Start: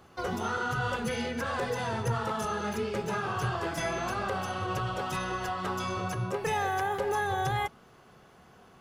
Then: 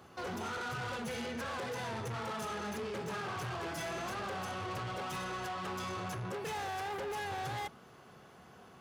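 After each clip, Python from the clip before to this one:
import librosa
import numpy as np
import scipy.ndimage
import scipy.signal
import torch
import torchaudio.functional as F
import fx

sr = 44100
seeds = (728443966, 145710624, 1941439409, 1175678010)

y = 10.0 ** (-36.5 / 20.0) * np.tanh(x / 10.0 ** (-36.5 / 20.0))
y = scipy.signal.sosfilt(scipy.signal.butter(2, 72.0, 'highpass', fs=sr, output='sos'), y)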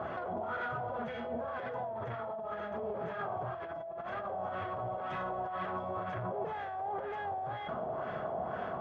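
y = fx.small_body(x, sr, hz=(640.0, 3300.0), ring_ms=40, db=16)
y = fx.over_compress(y, sr, threshold_db=-44.0, ratio=-1.0)
y = fx.filter_lfo_lowpass(y, sr, shape='sine', hz=2.0, low_hz=790.0, high_hz=1800.0, q=1.8)
y = F.gain(torch.from_numpy(y), 4.0).numpy()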